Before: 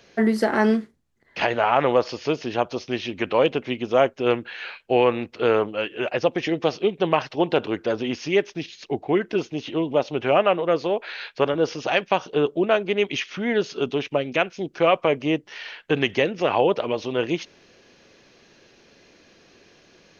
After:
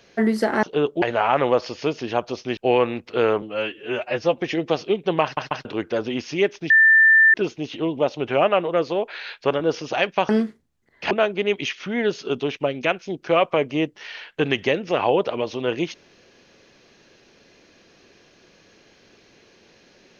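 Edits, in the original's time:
0.63–1.45 s: swap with 12.23–12.62 s
3.00–4.83 s: delete
5.68–6.32 s: stretch 1.5×
7.17 s: stutter in place 0.14 s, 3 plays
8.64–9.28 s: bleep 1.78 kHz -10 dBFS

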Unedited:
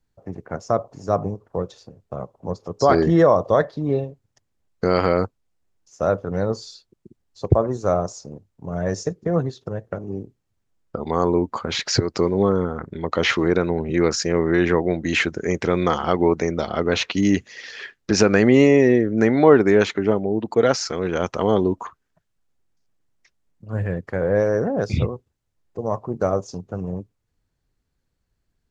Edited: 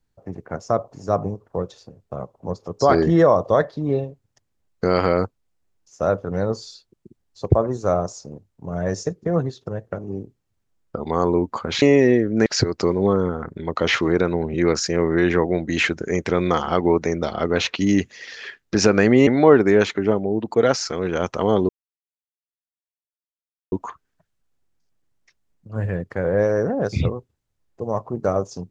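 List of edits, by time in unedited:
18.63–19.27 s: move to 11.82 s
21.69 s: insert silence 2.03 s

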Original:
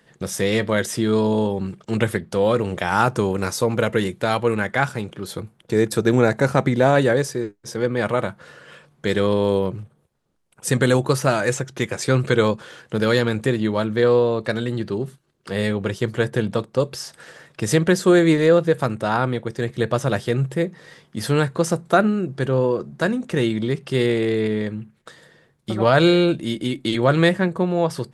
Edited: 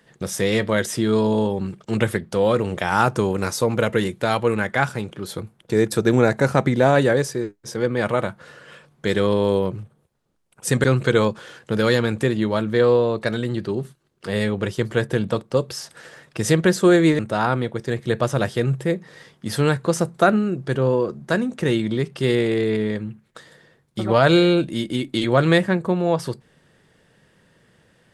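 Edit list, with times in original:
10.84–12.07 s: delete
18.42–18.90 s: delete

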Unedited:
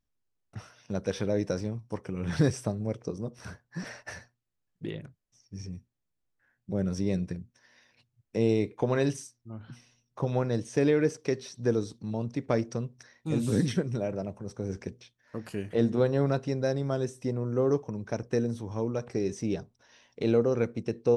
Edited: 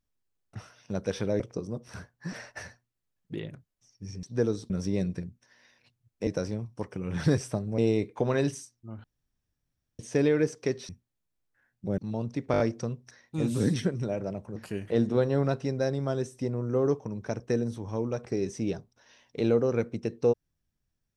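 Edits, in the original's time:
1.40–2.91 s: move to 8.40 s
5.74–6.83 s: swap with 11.51–11.98 s
9.66–10.61 s: room tone
12.52 s: stutter 0.02 s, 5 plays
14.48–15.39 s: delete

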